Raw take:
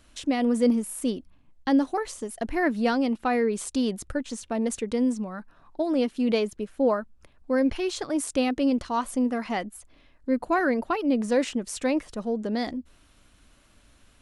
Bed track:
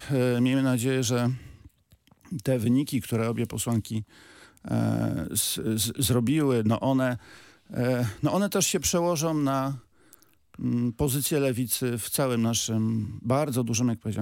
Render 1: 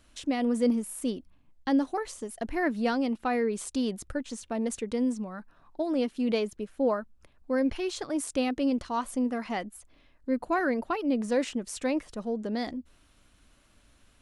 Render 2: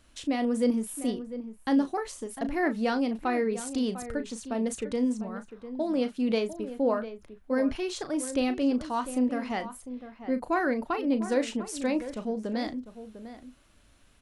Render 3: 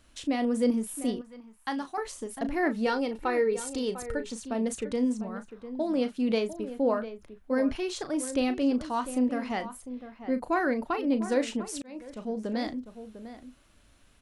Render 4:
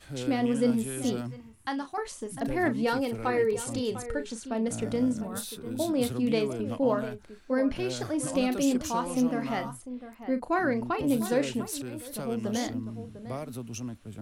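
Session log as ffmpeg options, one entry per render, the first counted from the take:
-af "volume=-3.5dB"
-filter_complex "[0:a]asplit=2[a][b];[b]adelay=36,volume=-11dB[c];[a][c]amix=inputs=2:normalize=0,asplit=2[d][e];[e]adelay=699.7,volume=-12dB,highshelf=f=4k:g=-15.7[f];[d][f]amix=inputs=2:normalize=0"
-filter_complex "[0:a]asettb=1/sr,asplit=3[a][b][c];[a]atrim=end=1.214[d];[b]atrim=start=1.21:end=1.98,asetpts=PTS-STARTPTS,afade=t=in:d=0.004:c=qsin,afade=t=out:st=0.766:d=0.004:c=qsin,lowshelf=f=680:t=q:w=1.5:g=-9.5[e];[c]atrim=start=1.976[f];[d][e]acrossfade=d=0.004:c1=hsin:c2=qsin[g];[g][f]acrossfade=d=0.004:c1=qsin:c2=hsin,asettb=1/sr,asplit=3[h][i][j];[h]atrim=end=2.864[k];[i]atrim=start=2.86:end=4.32,asetpts=PTS-STARTPTS,afade=t=in:d=0.004:c=qsin,afade=t=out:st=1.456:d=0.004:c=qsin,aecho=1:1:2.2:0.51,atrim=end_sample=64386[l];[j]atrim=start=4.316[m];[k][l]acrossfade=d=0.004:c1=hsin:c2=qsin[n];[n][m]acrossfade=d=0.004:c1=qsin:c2=hsin,asplit=2[o][p];[o]atrim=end=11.82,asetpts=PTS-STARTPTS,afade=t=out:st=11.816:d=0.004:c=hsin[q];[p]atrim=start=11.82,asetpts=PTS-STARTPTS,afade=t=in:d=0.59[r];[q][r]concat=n=2:v=0:a=1"
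-filter_complex "[1:a]volume=-12dB[a];[0:a][a]amix=inputs=2:normalize=0"

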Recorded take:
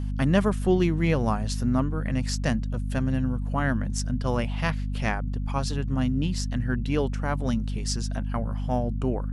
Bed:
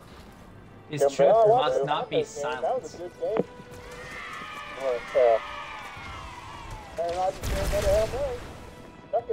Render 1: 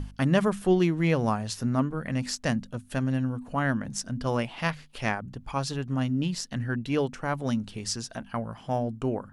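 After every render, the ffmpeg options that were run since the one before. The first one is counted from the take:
-af "bandreject=f=50:t=h:w=6,bandreject=f=100:t=h:w=6,bandreject=f=150:t=h:w=6,bandreject=f=200:t=h:w=6,bandreject=f=250:t=h:w=6"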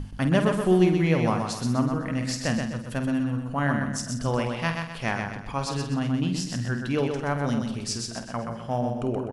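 -filter_complex "[0:a]asplit=2[a][b];[b]adelay=49,volume=-9dB[c];[a][c]amix=inputs=2:normalize=0,aecho=1:1:126|252|378|504|630:0.562|0.225|0.09|0.036|0.0144"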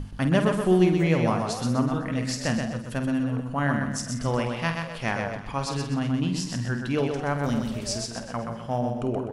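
-filter_complex "[1:a]volume=-15dB[a];[0:a][a]amix=inputs=2:normalize=0"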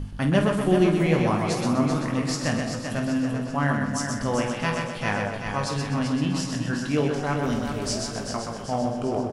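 -filter_complex "[0:a]asplit=2[a][b];[b]adelay=20,volume=-7dB[c];[a][c]amix=inputs=2:normalize=0,aecho=1:1:388|776|1164|1552|1940|2328:0.447|0.214|0.103|0.0494|0.0237|0.0114"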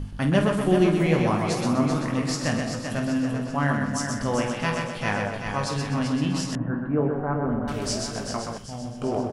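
-filter_complex "[0:a]asettb=1/sr,asplit=3[a][b][c];[a]atrim=end=6.554[d];[b]atrim=start=6.55:end=7.68,asetpts=PTS-STARTPTS,afade=t=in:d=0.004:c=qsin,afade=t=out:st=1.126:d=0.004:c=qsin,lowpass=f=1.4k:w=0.5412,lowpass=f=1.4k:w=1.3066[e];[c]atrim=start=7.676[f];[d][e]acrossfade=d=0.004:c1=hsin:c2=qsin[g];[g][f]acrossfade=d=0.004:c1=qsin:c2=hsin,asettb=1/sr,asplit=3[h][i][j];[h]atrim=end=8.584[k];[i]atrim=start=8.58:end=9.02,asetpts=PTS-STARTPTS,afade=t=in:d=0.004:c=qsin,afade=t=out:st=0.436:d=0.004:c=qsin,equalizer=f=660:w=0.36:g=-13.5[l];[j]atrim=start=9.016[m];[k][l]acrossfade=d=0.004:c1=hsin:c2=qsin[n];[n][m]acrossfade=d=0.004:c1=qsin:c2=hsin"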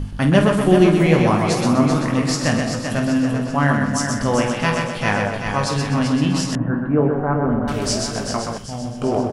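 -af "volume=6.5dB"

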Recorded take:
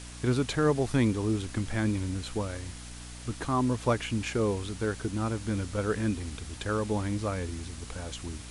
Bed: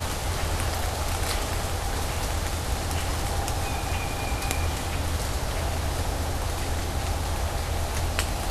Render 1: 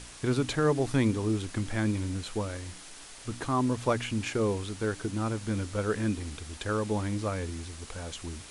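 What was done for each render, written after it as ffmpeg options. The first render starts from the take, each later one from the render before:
-af "bandreject=f=60:t=h:w=4,bandreject=f=120:t=h:w=4,bandreject=f=180:t=h:w=4,bandreject=f=240:t=h:w=4,bandreject=f=300:t=h:w=4"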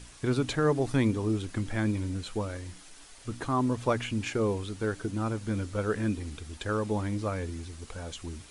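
-af "afftdn=nr=6:nf=-47"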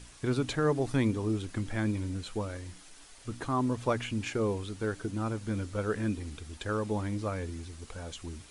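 -af "volume=-2dB"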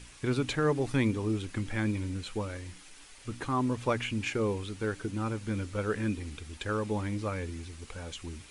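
-af "equalizer=f=2.4k:w=1.8:g=5,bandreject=f=670:w=12"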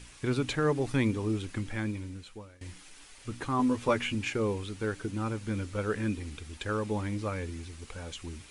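-filter_complex "[0:a]asettb=1/sr,asplit=3[a][b][c];[a]atrim=end=3.584[d];[b]atrim=start=3.58:end=4.15,asetpts=PTS-STARTPTS,afade=t=in:d=0.004:c=qsin,afade=t=out:st=0.566:d=0.004:c=qsin,asplit=2[e][f];[f]adelay=12,volume=-3.5dB[g];[e][g]amix=inputs=2:normalize=0,atrim=end_sample=25137[h];[c]atrim=start=4.146[i];[d][h]acrossfade=d=0.004:c1=hsin:c2=qsin[j];[j][i]acrossfade=d=0.004:c1=qsin:c2=hsin,asplit=2[k][l];[k]atrim=end=2.61,asetpts=PTS-STARTPTS,afade=t=out:st=1.49:d=1.12:silence=0.0891251[m];[l]atrim=start=2.61,asetpts=PTS-STARTPTS,afade=t=in:d=0.004:c=hsin:silence=0.0891251[n];[m][n]concat=n=2:v=0:a=1"

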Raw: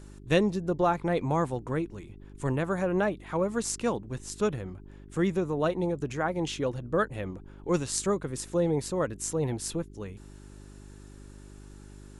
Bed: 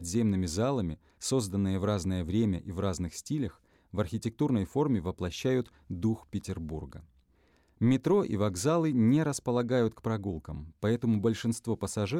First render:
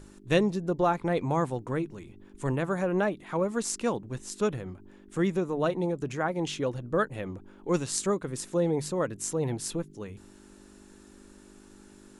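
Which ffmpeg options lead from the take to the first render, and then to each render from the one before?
-af "bandreject=f=50:t=h:w=4,bandreject=f=100:t=h:w=4,bandreject=f=150:t=h:w=4"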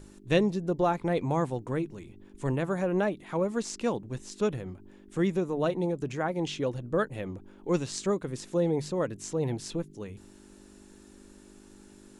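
-filter_complex "[0:a]acrossover=split=6600[a][b];[b]acompressor=threshold=-55dB:ratio=4:attack=1:release=60[c];[a][c]amix=inputs=2:normalize=0,equalizer=f=1.3k:t=o:w=0.98:g=-3.5"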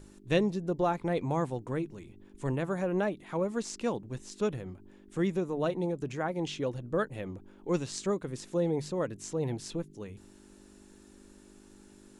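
-af "volume=-2.5dB"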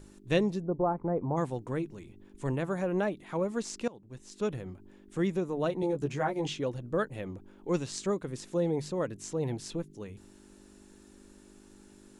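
-filter_complex "[0:a]asplit=3[a][b][c];[a]afade=t=out:st=0.62:d=0.02[d];[b]lowpass=f=1.2k:w=0.5412,lowpass=f=1.2k:w=1.3066,afade=t=in:st=0.62:d=0.02,afade=t=out:st=1.36:d=0.02[e];[c]afade=t=in:st=1.36:d=0.02[f];[d][e][f]amix=inputs=3:normalize=0,asettb=1/sr,asplit=3[g][h][i];[g]atrim=end=5.814[j];[h]atrim=start=5.81:end=6.53,asetpts=PTS-STARTPTS,afade=t=in:d=0.004:c=qsin,afade=t=out:st=0.716:d=0.004:c=qsin,asplit=2[k][l];[l]adelay=14,volume=-2dB[m];[k][m]amix=inputs=2:normalize=0,atrim=end_sample=31752[n];[i]atrim=start=6.526[o];[j][n]acrossfade=d=0.004:c1=hsin:c2=qsin[p];[p][o]acrossfade=d=0.004:c1=qsin:c2=hsin,asplit=2[q][r];[q]atrim=end=3.88,asetpts=PTS-STARTPTS,afade=t=out:st=3.876:d=0.004:c=hsin:silence=0.0794328[s];[r]atrim=start=3.88,asetpts=PTS-STARTPTS,afade=t=in:d=0.68:silence=0.0794328[t];[s][t]concat=n=2:v=0:a=1"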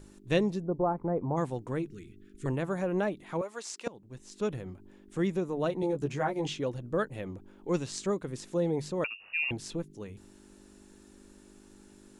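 -filter_complex "[0:a]asettb=1/sr,asplit=3[a][b][c];[a]atrim=end=1.884[d];[b]atrim=start=1.88:end=2.46,asetpts=PTS-STARTPTS,afade=t=in:d=0.004:c=qsin,afade=t=out:st=0.576:d=0.004:c=qsin,asuperstop=centerf=760:order=12:qfactor=0.95[e];[c]atrim=start=2.456[f];[d][e]acrossfade=d=0.004:c1=hsin:c2=qsin[g];[g][f]acrossfade=d=0.004:c1=qsin:c2=hsin,asettb=1/sr,asplit=3[h][i][j];[h]atrim=end=3.414[k];[i]atrim=start=3.41:end=3.87,asetpts=PTS-STARTPTS,afade=t=in:d=0.004:c=qsin,afade=t=out:st=0.456:d=0.004:c=qsin,highpass=660[l];[j]atrim=start=3.866[m];[k][l]acrossfade=d=0.004:c1=hsin:c2=qsin[n];[n][m]acrossfade=d=0.004:c1=qsin:c2=hsin,asettb=1/sr,asplit=3[o][p][q];[o]atrim=end=9.044[r];[p]atrim=start=9.04:end=9.51,asetpts=PTS-STARTPTS,afade=t=in:d=0.004:c=qsin,afade=t=out:st=0.466:d=0.004:c=qsin,lowpass=f=2.5k:t=q:w=0.5098,lowpass=f=2.5k:t=q:w=0.6013,lowpass=f=2.5k:t=q:w=0.9,lowpass=f=2.5k:t=q:w=2.563,afreqshift=-2900[s];[q]atrim=start=9.506[t];[r][s]acrossfade=d=0.004:c1=hsin:c2=qsin[u];[u][t]acrossfade=d=0.004:c1=qsin:c2=hsin"

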